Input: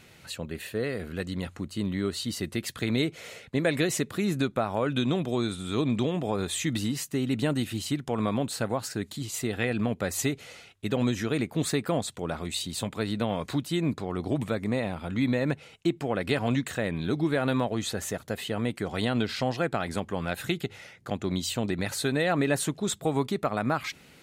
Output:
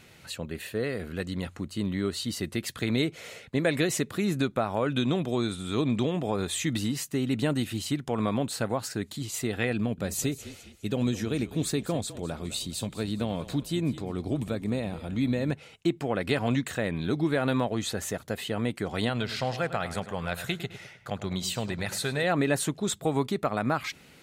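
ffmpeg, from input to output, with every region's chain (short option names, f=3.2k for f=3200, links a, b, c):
-filter_complex "[0:a]asettb=1/sr,asplit=3[a][b][c];[a]atrim=end=9.774[d];[b]atrim=start=9.77:end=15.52,asetpts=PTS-STARTPTS,afade=t=in:d=0.004:c=qsin,afade=t=out:st=5.746:d=0.004:c=qsin,equalizer=f=1.2k:w=0.58:g=-6.5,bandreject=f=2k:w=16,asplit=5[e][f][g][h][i];[f]adelay=205,afreqshift=-32,volume=-15dB[j];[g]adelay=410,afreqshift=-64,volume=-23.2dB[k];[h]adelay=615,afreqshift=-96,volume=-31.4dB[l];[i]adelay=820,afreqshift=-128,volume=-39.5dB[m];[e][j][k][l][m]amix=inputs=5:normalize=0,atrim=end_sample=253575[n];[c]atrim=start=15.516[o];[d][n]acrossfade=d=0.004:c1=hsin:c2=qsin[p];[p][o]acrossfade=d=0.004:c1=qsin:c2=hsin,asettb=1/sr,asplit=3[q][r][s];[q]atrim=end=19.094[t];[r]atrim=start=19.09:end=22.24,asetpts=PTS-STARTPTS,afade=t=in:d=0.004:c=qsin,afade=t=out:st=3.146:d=0.004:c=qsin,equalizer=f=290:w=1.8:g=-9.5,asplit=2[u][v];[v]adelay=104,lowpass=f=4.3k:p=1,volume=-12dB,asplit=2[w][x];[x]adelay=104,lowpass=f=4.3k:p=1,volume=0.41,asplit=2[y][z];[z]adelay=104,lowpass=f=4.3k:p=1,volume=0.41,asplit=2[aa][ab];[ab]adelay=104,lowpass=f=4.3k:p=1,volume=0.41[ac];[u][w][y][aa][ac]amix=inputs=5:normalize=0,atrim=end_sample=138915[ad];[s]atrim=start=22.236[ae];[t][ad]acrossfade=d=0.004:c1=hsin:c2=qsin[af];[af][ae]acrossfade=d=0.004:c1=qsin:c2=hsin"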